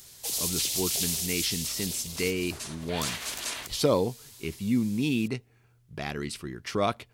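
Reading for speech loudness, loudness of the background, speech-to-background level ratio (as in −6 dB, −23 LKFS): −31.0 LKFS, −30.5 LKFS, −0.5 dB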